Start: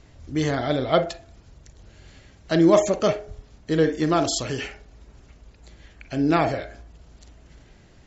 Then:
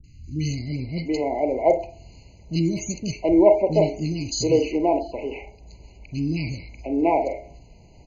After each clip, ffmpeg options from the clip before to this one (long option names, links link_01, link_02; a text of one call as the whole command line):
ffmpeg -i in.wav -filter_complex "[0:a]acrossover=split=260|2300[link_01][link_02][link_03];[link_03]adelay=40[link_04];[link_02]adelay=730[link_05];[link_01][link_05][link_04]amix=inputs=3:normalize=0,afftfilt=real='re*eq(mod(floor(b*sr/1024/1000),2),0)':imag='im*eq(mod(floor(b*sr/1024/1000),2),0)':win_size=1024:overlap=0.75,volume=3dB" out.wav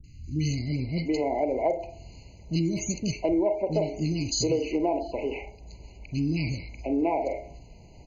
ffmpeg -i in.wav -af "acompressor=threshold=-22dB:ratio=6" out.wav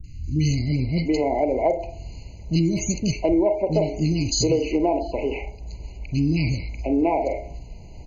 ffmpeg -i in.wav -af "lowshelf=frequency=75:gain=9.5,volume=4.5dB" out.wav